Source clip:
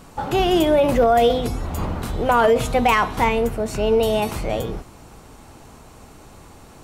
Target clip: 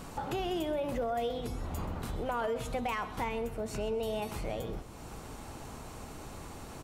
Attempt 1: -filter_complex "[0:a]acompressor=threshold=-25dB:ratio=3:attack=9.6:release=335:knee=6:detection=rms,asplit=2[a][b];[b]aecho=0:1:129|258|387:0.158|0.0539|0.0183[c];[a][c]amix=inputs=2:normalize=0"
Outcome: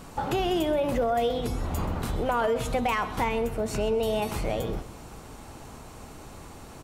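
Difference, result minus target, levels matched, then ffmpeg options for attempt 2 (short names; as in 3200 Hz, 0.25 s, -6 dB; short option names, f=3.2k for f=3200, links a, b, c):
compressor: peak gain reduction -7.5 dB
-filter_complex "[0:a]acompressor=threshold=-36.5dB:ratio=3:attack=9.6:release=335:knee=6:detection=rms,asplit=2[a][b];[b]aecho=0:1:129|258|387:0.158|0.0539|0.0183[c];[a][c]amix=inputs=2:normalize=0"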